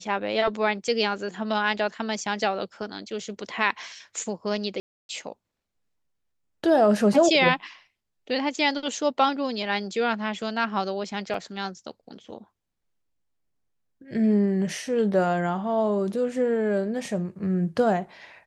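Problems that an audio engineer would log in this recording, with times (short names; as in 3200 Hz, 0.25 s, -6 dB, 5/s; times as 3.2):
4.8–5.09 gap 0.291 s
11.34 gap 3.6 ms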